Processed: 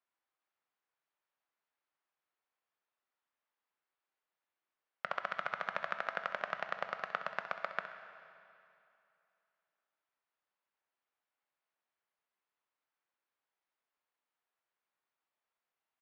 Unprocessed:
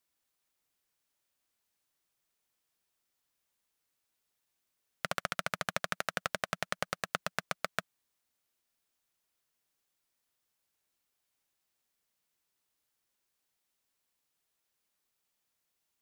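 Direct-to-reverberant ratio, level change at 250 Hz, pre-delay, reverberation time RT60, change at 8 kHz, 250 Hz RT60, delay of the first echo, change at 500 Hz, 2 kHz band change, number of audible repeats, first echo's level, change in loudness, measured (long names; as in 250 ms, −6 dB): 6.5 dB, −11.5 dB, 15 ms, 2.7 s, below −20 dB, 2.7 s, 65 ms, −2.5 dB, −2.0 dB, 1, −12.5 dB, −3.0 dB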